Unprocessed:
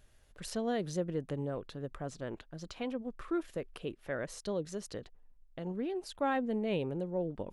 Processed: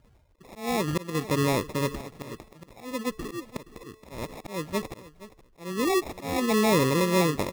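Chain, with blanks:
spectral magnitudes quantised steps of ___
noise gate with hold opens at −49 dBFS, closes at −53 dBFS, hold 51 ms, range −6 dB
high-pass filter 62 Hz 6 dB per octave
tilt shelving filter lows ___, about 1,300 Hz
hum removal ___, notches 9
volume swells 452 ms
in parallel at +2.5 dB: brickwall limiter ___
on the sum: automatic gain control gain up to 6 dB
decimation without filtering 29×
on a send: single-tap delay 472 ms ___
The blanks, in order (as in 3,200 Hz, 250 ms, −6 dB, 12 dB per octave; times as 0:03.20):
30 dB, +3 dB, 438.2 Hz, −31.5 dBFS, −17 dB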